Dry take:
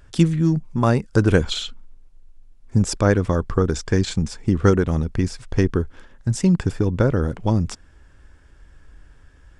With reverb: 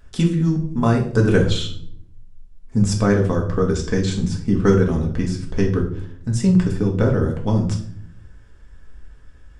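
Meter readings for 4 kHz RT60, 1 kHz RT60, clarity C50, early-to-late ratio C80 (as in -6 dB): 0.45 s, 0.45 s, 9.0 dB, 13.0 dB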